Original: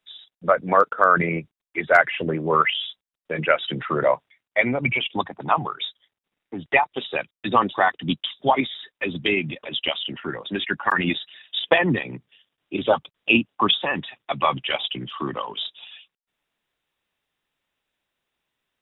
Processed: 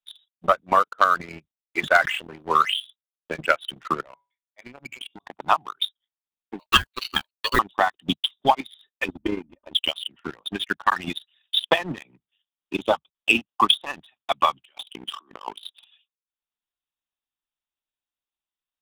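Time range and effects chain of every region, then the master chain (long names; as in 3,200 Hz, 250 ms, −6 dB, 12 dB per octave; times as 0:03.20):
0:01.79–0:02.80: high-pass filter 100 Hz + spectral tilt +1.5 dB per octave + level that may fall only so fast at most 52 dB per second
0:04.02–0:05.26: tuned comb filter 140 Hz, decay 0.29 s, mix 40% + downward compressor 3 to 1, threshold −29 dBFS + volume swells 128 ms
0:06.59–0:07.59: one scale factor per block 7 bits + high-shelf EQ 2,600 Hz +11 dB + ring modulation 770 Hz
0:09.08–0:09.75: low-pass filter 1,000 Hz + low-shelf EQ 65 Hz +9 dB + comb filter 3.3 ms, depth 79%
0:14.65–0:15.81: high-pass filter 210 Hz 24 dB per octave + compressor whose output falls as the input rises −35 dBFS
whole clip: octave-band graphic EQ 125/250/500/2,000 Hz −10/−4/−10/−8 dB; transient designer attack +10 dB, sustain −4 dB; leveller curve on the samples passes 2; level −8.5 dB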